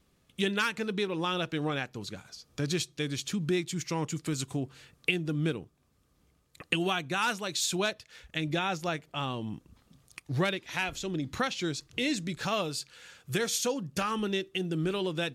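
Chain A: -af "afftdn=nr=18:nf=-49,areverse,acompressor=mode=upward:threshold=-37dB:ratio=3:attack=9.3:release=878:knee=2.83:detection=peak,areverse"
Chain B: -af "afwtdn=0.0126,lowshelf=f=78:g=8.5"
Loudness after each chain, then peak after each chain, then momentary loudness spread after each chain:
-32.0, -31.5 LUFS; -11.0, -11.0 dBFS; 10, 9 LU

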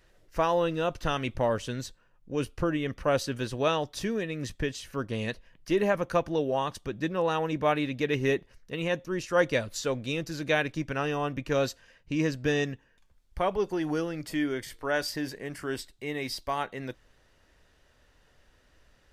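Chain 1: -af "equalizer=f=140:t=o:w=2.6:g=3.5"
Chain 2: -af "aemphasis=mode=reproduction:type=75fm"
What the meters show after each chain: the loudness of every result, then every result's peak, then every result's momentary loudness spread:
-29.0, -30.0 LUFS; -11.5, -12.0 dBFS; 9, 10 LU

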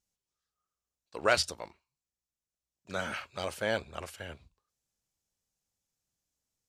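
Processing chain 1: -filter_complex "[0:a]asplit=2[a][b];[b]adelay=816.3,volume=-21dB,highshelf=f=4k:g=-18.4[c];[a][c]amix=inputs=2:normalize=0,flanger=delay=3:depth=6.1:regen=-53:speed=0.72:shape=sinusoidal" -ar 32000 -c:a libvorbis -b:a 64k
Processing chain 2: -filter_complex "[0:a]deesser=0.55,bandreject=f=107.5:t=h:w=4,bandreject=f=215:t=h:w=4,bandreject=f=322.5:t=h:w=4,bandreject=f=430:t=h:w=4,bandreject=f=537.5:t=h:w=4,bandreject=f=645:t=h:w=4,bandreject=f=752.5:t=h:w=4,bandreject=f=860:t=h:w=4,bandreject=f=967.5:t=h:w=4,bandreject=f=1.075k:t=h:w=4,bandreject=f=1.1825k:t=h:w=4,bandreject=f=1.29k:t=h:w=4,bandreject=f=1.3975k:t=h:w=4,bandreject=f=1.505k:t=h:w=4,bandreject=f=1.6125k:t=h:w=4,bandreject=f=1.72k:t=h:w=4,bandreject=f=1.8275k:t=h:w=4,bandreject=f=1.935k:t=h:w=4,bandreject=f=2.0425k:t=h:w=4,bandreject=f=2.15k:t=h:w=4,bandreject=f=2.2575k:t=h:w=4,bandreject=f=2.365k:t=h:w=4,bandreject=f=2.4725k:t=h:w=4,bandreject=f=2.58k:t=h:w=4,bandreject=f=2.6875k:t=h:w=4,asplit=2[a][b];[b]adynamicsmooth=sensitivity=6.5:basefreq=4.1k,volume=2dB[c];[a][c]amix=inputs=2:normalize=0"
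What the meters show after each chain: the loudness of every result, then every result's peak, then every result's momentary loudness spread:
-37.5, -27.0 LUFS; -15.0, -4.0 dBFS; 24, 19 LU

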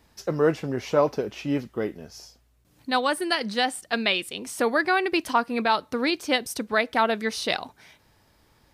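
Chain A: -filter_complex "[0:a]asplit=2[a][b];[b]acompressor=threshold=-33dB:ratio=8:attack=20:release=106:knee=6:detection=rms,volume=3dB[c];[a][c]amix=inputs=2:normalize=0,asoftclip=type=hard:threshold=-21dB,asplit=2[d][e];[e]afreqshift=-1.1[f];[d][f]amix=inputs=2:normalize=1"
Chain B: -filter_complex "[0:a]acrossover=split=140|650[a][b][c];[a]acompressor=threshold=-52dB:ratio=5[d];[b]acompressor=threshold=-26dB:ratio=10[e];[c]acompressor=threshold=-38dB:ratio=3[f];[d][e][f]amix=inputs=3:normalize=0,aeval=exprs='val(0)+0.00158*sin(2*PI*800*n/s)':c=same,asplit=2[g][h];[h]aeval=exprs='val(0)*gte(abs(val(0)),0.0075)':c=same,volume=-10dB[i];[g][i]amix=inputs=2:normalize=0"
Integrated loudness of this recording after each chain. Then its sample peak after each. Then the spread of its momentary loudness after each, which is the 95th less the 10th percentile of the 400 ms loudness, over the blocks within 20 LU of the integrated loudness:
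-29.5, -29.0 LUFS; -15.5, -12.5 dBFS; 8, 7 LU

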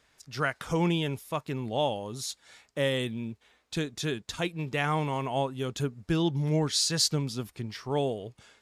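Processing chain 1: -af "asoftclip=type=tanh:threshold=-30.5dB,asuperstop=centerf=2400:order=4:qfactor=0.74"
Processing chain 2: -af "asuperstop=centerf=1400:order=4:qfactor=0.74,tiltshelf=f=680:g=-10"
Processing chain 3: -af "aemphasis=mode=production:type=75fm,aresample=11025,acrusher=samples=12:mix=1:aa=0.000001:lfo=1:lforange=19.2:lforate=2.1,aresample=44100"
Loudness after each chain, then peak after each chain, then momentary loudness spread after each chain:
-37.0, -26.0, -30.5 LUFS; -25.5, -3.5, -7.5 dBFS; 8, 18, 14 LU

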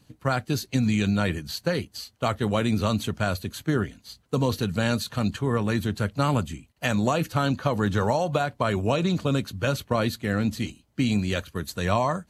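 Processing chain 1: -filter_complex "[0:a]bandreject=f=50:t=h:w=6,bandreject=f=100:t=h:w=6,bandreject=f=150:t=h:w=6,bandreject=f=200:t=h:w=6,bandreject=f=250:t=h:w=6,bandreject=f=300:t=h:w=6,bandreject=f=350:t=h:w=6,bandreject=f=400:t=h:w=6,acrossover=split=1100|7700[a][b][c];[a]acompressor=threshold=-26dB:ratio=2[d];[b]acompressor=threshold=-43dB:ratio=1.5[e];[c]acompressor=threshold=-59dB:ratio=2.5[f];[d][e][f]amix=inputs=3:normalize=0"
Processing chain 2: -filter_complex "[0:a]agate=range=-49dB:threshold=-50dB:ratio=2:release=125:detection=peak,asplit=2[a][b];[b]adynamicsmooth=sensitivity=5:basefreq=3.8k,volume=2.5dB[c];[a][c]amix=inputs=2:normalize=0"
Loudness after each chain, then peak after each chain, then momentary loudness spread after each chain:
-30.0, -19.0 LUFS; -13.0, -1.5 dBFS; 5, 6 LU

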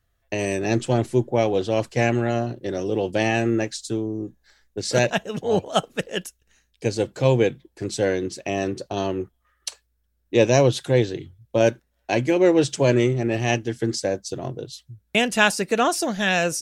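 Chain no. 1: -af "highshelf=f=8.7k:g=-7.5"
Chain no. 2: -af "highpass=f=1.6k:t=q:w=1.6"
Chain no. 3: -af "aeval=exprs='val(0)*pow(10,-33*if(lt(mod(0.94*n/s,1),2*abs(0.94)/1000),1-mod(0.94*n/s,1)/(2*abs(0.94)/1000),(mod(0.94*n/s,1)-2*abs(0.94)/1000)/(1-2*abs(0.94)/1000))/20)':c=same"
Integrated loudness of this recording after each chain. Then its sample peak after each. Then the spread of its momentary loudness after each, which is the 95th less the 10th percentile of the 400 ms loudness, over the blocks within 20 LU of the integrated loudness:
-23.0, -26.5, -30.5 LUFS; -3.0, -2.0, -7.0 dBFS; 13, 17, 21 LU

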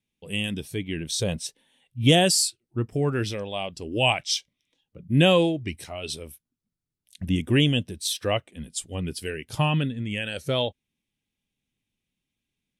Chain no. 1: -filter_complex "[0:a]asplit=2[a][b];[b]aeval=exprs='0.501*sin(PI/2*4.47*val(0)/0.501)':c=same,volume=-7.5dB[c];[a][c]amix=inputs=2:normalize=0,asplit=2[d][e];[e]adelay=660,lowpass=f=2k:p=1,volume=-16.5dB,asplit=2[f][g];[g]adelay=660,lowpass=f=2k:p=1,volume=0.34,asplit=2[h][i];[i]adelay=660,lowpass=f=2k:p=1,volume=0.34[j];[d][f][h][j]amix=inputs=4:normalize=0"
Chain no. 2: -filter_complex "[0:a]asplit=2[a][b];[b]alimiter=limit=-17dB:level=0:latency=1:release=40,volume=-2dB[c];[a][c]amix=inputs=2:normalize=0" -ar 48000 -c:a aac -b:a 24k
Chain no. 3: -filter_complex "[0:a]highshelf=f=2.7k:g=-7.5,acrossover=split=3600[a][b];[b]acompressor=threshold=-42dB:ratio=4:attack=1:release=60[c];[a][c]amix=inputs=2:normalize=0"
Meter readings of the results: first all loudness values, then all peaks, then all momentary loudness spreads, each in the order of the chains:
-17.0, -21.5, -26.5 LUFS; -4.5, -3.0, -8.5 dBFS; 20, 13, 17 LU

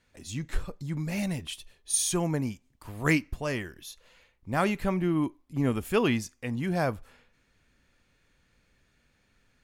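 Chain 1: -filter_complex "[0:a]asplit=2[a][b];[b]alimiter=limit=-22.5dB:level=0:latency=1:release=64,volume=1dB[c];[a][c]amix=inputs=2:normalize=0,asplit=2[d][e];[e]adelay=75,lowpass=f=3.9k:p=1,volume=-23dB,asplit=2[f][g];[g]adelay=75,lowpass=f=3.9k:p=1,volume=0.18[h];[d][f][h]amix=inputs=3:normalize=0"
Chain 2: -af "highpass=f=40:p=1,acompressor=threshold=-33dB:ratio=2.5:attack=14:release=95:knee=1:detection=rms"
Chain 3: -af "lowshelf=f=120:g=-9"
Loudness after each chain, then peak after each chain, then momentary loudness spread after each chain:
-25.5, -35.5, -31.0 LUFS; -8.0, -18.0, -11.0 dBFS; 14, 10, 15 LU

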